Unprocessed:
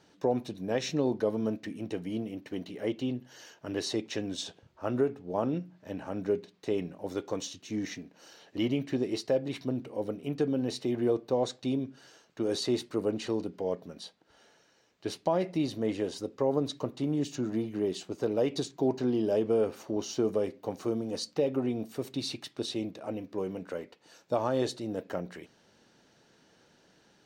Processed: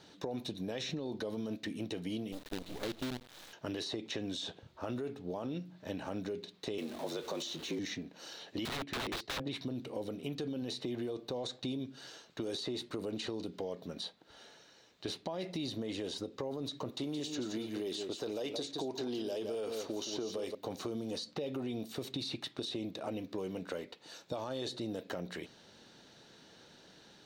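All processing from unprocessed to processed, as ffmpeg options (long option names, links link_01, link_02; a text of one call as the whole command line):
ffmpeg -i in.wav -filter_complex "[0:a]asettb=1/sr,asplit=3[link_01][link_02][link_03];[link_01]atrim=end=2.324[link_04];[link_02]atrim=start=2.32:end=3.53,asetpts=PTS-STARTPTS,afade=type=in:duration=0.004:curve=qsin,afade=type=out:start_time=1.206:duration=0.004:curve=qsin,highshelf=frequency=2300:gain=-11.5,acrusher=bits=6:dc=4:mix=0:aa=0.000001[link_05];[link_03]atrim=start=3.526[link_06];[link_04][link_05]acrossfade=duration=0.004:curve1=hsin:curve2=qsin[link_07];[link_07][link_06]acrossfade=duration=0.004:curve1=qsin:curve2=hsin,asettb=1/sr,asplit=3[link_08][link_09][link_10];[link_08]atrim=end=6.784[link_11];[link_09]atrim=start=6.78:end=7.79,asetpts=PTS-STARTPTS,afade=type=in:duration=0.004:curve=qsin,afade=type=out:start_time=1.006:duration=0.004:curve=qsin,aeval=exprs='val(0)+0.5*0.00501*sgn(val(0))':channel_layout=same,afreqshift=61[link_12];[link_10]atrim=start=7.786[link_13];[link_11][link_12]acrossfade=duration=0.004:curve1=hsin:curve2=qsin[link_14];[link_14][link_13]acrossfade=duration=0.004:curve1=qsin:curve2=hsin,asettb=1/sr,asplit=3[link_15][link_16][link_17];[link_15]atrim=end=8.654[link_18];[link_16]atrim=start=8.65:end=9.47,asetpts=PTS-STARTPTS,afade=type=in:duration=0.004:curve=qsin,afade=type=out:start_time=0.816:duration=0.004:curve=qsin,agate=range=-6dB:threshold=-37dB:ratio=16:release=100:detection=peak,aeval=exprs='(mod(37.6*val(0)+1,2)-1)/37.6':channel_layout=same[link_19];[link_17]atrim=start=9.466[link_20];[link_18][link_19]acrossfade=duration=0.004:curve1=hsin:curve2=qsin[link_21];[link_21][link_20]acrossfade=duration=0.004:curve1=qsin:curve2=hsin,asettb=1/sr,asplit=3[link_22][link_23][link_24];[link_22]atrim=end=16.924[link_25];[link_23]atrim=start=16.92:end=20.55,asetpts=PTS-STARTPTS,afade=type=in:duration=0.004:curve=qsin,afade=type=out:start_time=3.626:duration=0.004:curve=qsin,bass=frequency=250:gain=-8,treble=frequency=4000:gain=4,aecho=1:1:170:0.316,atrim=end_sample=160083[link_26];[link_24]atrim=start=20.546[link_27];[link_25][link_26]acrossfade=duration=0.004:curve1=hsin:curve2=qsin[link_28];[link_28][link_27]acrossfade=duration=0.004:curve1=qsin:curve2=hsin,equalizer=frequency=3800:width=3.2:gain=8,alimiter=level_in=2dB:limit=-24dB:level=0:latency=1:release=33,volume=-2dB,acrossover=split=2600|5800[link_29][link_30][link_31];[link_29]acompressor=threshold=-40dB:ratio=4[link_32];[link_30]acompressor=threshold=-49dB:ratio=4[link_33];[link_31]acompressor=threshold=-58dB:ratio=4[link_34];[link_32][link_33][link_34]amix=inputs=3:normalize=0,volume=3.5dB" out.wav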